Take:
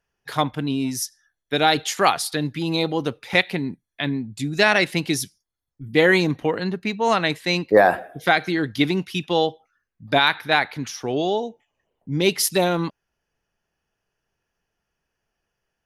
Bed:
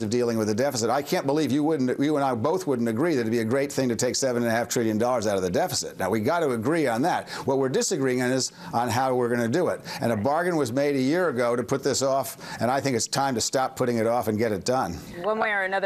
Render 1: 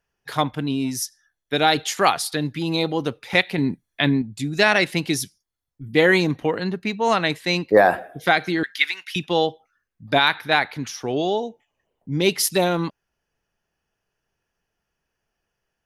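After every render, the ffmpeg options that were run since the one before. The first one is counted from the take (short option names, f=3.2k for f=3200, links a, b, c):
-filter_complex "[0:a]asettb=1/sr,asplit=3[a][b][c];[a]atrim=end=8.634[d];[b]atrim=start=8.63:end=9.16,asetpts=PTS-STARTPTS,afade=t=in:d=0.004:c=qsin,afade=t=out:st=0.526:d=0.004:c=qsin,highpass=f=1.8k:t=q:w=2.6[e];[c]atrim=start=9.156[f];[d][e]acrossfade=d=0.004:c1=hsin:c2=qsin[g];[g][f]acrossfade=d=0.004:c1=qsin:c2=hsin,asplit=3[h][i][j];[h]atrim=end=3.582[k];[i]atrim=start=3.578:end=4.222,asetpts=PTS-STARTPTS,volume=5.5dB[l];[j]atrim=start=4.218[m];[k][l]acrossfade=d=0.004:c1=hsin:c2=hsin[n];[n][m]acrossfade=d=0.004:c1=hsin:c2=hsin"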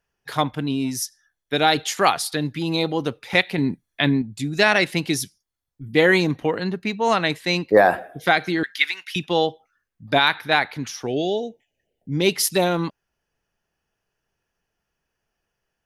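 -filter_complex "[0:a]asettb=1/sr,asplit=3[a][b][c];[a]atrim=end=11.074[d];[b]atrim=start=11.07:end=12.12,asetpts=PTS-STARTPTS,afade=t=in:d=0.004:c=qsin,afade=t=out:st=1.046:d=0.004:c=qsin,asuperstop=centerf=1100:order=4:qfactor=1.1[e];[c]atrim=start=12.116[f];[d][e]acrossfade=d=0.004:c1=hsin:c2=qsin[g];[g][f]acrossfade=d=0.004:c1=qsin:c2=hsin"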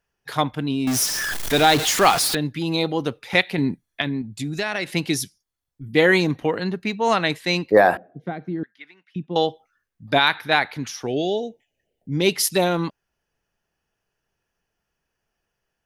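-filter_complex "[0:a]asettb=1/sr,asplit=3[a][b][c];[a]atrim=end=0.874[d];[b]atrim=start=0.87:end=2.35,asetpts=PTS-STARTPTS,afade=t=in:d=0.004:c=qsin,afade=t=out:st=1.476:d=0.004:c=qsin,aeval=exprs='val(0)+0.5*0.106*sgn(val(0))':c=same[e];[c]atrim=start=2.346[f];[d][e]acrossfade=d=0.004:c1=hsin:c2=qsin[g];[g][f]acrossfade=d=0.004:c1=qsin:c2=hsin,asettb=1/sr,asplit=3[h][i][j];[h]atrim=end=4.014[k];[i]atrim=start=4.01:end=4.88,asetpts=PTS-STARTPTS,afade=t=in:d=0.004:c=qsin,afade=t=out:st=0.866:d=0.004:c=qsin,acompressor=threshold=-23dB:ratio=3:attack=3.2:release=140:knee=1:detection=peak[l];[j]atrim=start=4.876[m];[k][l]acrossfade=d=0.004:c1=hsin:c2=qsin[n];[n][m]acrossfade=d=0.004:c1=qsin:c2=hsin,asettb=1/sr,asplit=3[o][p][q];[o]atrim=end=7.974[r];[p]atrim=start=7.97:end=9.36,asetpts=PTS-STARTPTS,afade=t=in:d=0.004:c=qsin,afade=t=out:st=1.386:d=0.004:c=qsin,bandpass=f=190:t=q:w=1.2[s];[q]atrim=start=9.356[t];[r][s]acrossfade=d=0.004:c1=hsin:c2=qsin[u];[u][t]acrossfade=d=0.004:c1=qsin:c2=hsin"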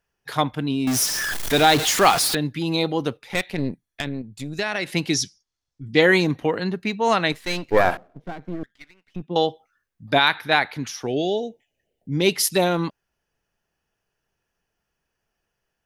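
-filter_complex "[0:a]asettb=1/sr,asplit=3[a][b][c];[a]atrim=end=3.174[d];[b]atrim=start=3.17:end=4.59,asetpts=PTS-STARTPTS,afade=t=in:d=0.004:c=qsin,afade=t=out:st=1.416:d=0.004:c=qsin,aeval=exprs='(tanh(7.08*val(0)+0.8)-tanh(0.8))/7.08':c=same[e];[c]atrim=start=4.586[f];[d][e]acrossfade=d=0.004:c1=hsin:c2=qsin[g];[g][f]acrossfade=d=0.004:c1=qsin:c2=hsin,asettb=1/sr,asplit=3[h][i][j];[h]atrim=end=5.144[k];[i]atrim=start=5.14:end=6.02,asetpts=PTS-STARTPTS,afade=t=in:d=0.004:c=qsin,afade=t=out:st=0.876:d=0.004:c=qsin,lowpass=f=5.8k:t=q:w=2.3[l];[j]atrim=start=6.016[m];[k][l]acrossfade=d=0.004:c1=hsin:c2=qsin[n];[n][m]acrossfade=d=0.004:c1=qsin:c2=hsin,asettb=1/sr,asplit=3[o][p][q];[o]atrim=end=7.324[r];[p]atrim=start=7.32:end=9.22,asetpts=PTS-STARTPTS,afade=t=in:d=0.004:c=qsin,afade=t=out:st=1.896:d=0.004:c=qsin,aeval=exprs='if(lt(val(0),0),0.251*val(0),val(0))':c=same[s];[q]atrim=start=9.216[t];[r][s]acrossfade=d=0.004:c1=hsin:c2=qsin[u];[u][t]acrossfade=d=0.004:c1=qsin:c2=hsin"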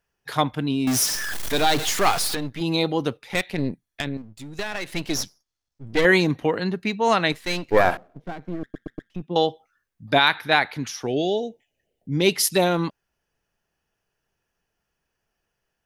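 -filter_complex "[0:a]asettb=1/sr,asplit=3[a][b][c];[a]atrim=end=1.154[d];[b]atrim=start=1.15:end=2.61,asetpts=PTS-STARTPTS,afade=t=in:d=0.004:c=qsin,afade=t=out:st=1.456:d=0.004:c=qsin,aeval=exprs='if(lt(val(0),0),0.251*val(0),val(0))':c=same[e];[c]atrim=start=2.606[f];[d][e]acrossfade=d=0.004:c1=hsin:c2=qsin[g];[g][f]acrossfade=d=0.004:c1=qsin:c2=hsin,asettb=1/sr,asplit=3[h][i][j];[h]atrim=end=4.174[k];[i]atrim=start=4.17:end=6.05,asetpts=PTS-STARTPTS,afade=t=in:d=0.004:c=qsin,afade=t=out:st=1.876:d=0.004:c=qsin,aeval=exprs='if(lt(val(0),0),0.251*val(0),val(0))':c=same[l];[j]atrim=start=6.046[m];[k][l]acrossfade=d=0.004:c1=hsin:c2=qsin[n];[n][m]acrossfade=d=0.004:c1=qsin:c2=hsin,asplit=5[o][p][q][r][s];[o]atrim=end=8.742[t];[p]atrim=start=8.618:end=8.742[u];[q]atrim=start=8.618:end=8.742[v];[r]atrim=start=8.618:end=8.742[w];[s]atrim=start=9.098[x];[t][u]acrossfade=d=0.004:c1=hsin:c2=hsin[y];[y][v]acrossfade=d=0.004:c1=hsin:c2=hsin[z];[z][w]acrossfade=d=0.004:c1=hsin:c2=hsin[aa];[aa][x]acrossfade=d=0.004:c1=hsin:c2=hsin"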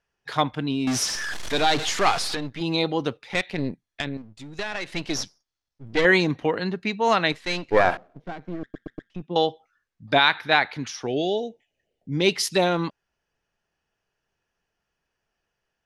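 -af "lowpass=6.4k,lowshelf=f=400:g=-3"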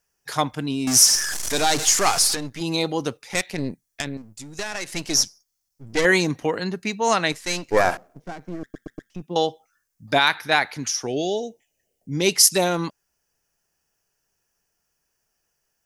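-af "aexciter=amount=6.6:drive=3.4:freq=5.2k"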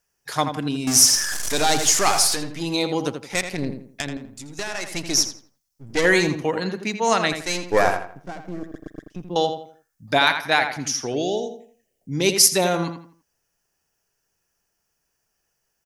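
-filter_complex "[0:a]asplit=2[a][b];[b]adelay=83,lowpass=f=3k:p=1,volume=-7.5dB,asplit=2[c][d];[d]adelay=83,lowpass=f=3k:p=1,volume=0.34,asplit=2[e][f];[f]adelay=83,lowpass=f=3k:p=1,volume=0.34,asplit=2[g][h];[h]adelay=83,lowpass=f=3k:p=1,volume=0.34[i];[a][c][e][g][i]amix=inputs=5:normalize=0"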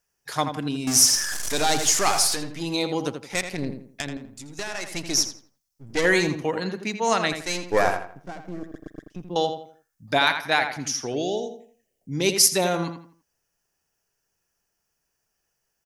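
-af "volume=-2.5dB"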